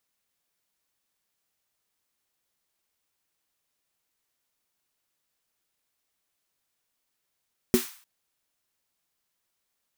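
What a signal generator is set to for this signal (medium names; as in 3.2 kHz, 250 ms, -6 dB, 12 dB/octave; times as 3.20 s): snare drum length 0.30 s, tones 240 Hz, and 370 Hz, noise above 940 Hz, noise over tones -11.5 dB, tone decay 0.13 s, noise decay 0.48 s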